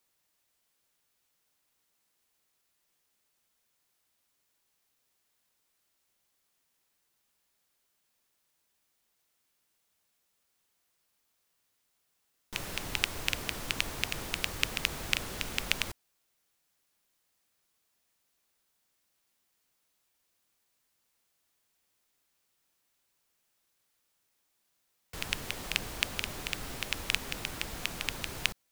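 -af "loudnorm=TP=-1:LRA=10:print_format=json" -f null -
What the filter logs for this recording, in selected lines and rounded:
"input_i" : "-34.1",
"input_tp" : "-2.9",
"input_lra" : "6.4",
"input_thresh" : "-44.2",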